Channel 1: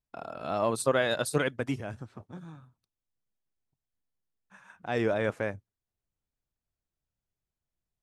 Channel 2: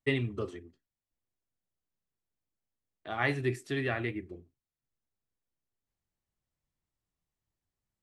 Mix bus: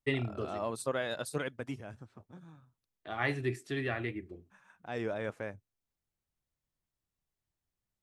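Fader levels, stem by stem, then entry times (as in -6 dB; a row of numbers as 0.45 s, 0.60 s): -8.0 dB, -2.5 dB; 0.00 s, 0.00 s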